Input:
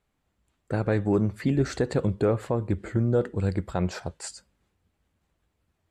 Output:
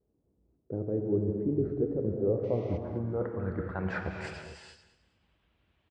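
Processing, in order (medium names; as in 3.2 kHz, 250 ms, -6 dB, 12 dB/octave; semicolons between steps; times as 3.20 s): high-pass 47 Hz; reverse; compression 6:1, threshold -31 dBFS, peak gain reduction 12.5 dB; reverse; wow and flutter 83 cents; gated-style reverb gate 480 ms flat, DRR 3 dB; painted sound noise, 2.43–2.78 s, 1.9–6.5 kHz -34 dBFS; on a send: feedback delay 209 ms, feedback 26%, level -15 dB; on the sum: low-pass sweep 410 Hz -> 3.1 kHz, 2.08–4.63 s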